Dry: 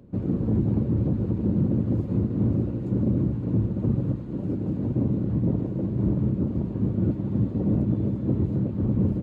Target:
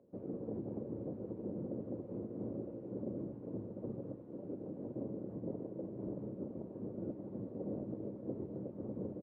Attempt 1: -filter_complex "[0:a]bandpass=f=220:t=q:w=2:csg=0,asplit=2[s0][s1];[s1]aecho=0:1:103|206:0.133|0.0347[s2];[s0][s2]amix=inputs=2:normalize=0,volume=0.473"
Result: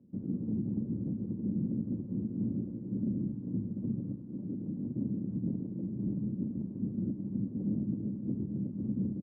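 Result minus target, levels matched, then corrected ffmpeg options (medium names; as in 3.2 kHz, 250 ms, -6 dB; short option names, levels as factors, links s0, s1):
500 Hz band -13.5 dB
-filter_complex "[0:a]bandpass=f=530:t=q:w=2:csg=0,asplit=2[s0][s1];[s1]aecho=0:1:103|206:0.133|0.0347[s2];[s0][s2]amix=inputs=2:normalize=0,volume=0.473"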